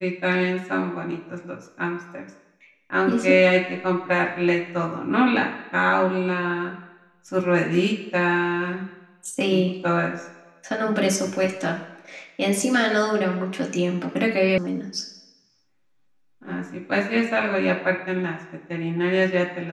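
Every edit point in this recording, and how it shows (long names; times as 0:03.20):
0:14.58: cut off before it has died away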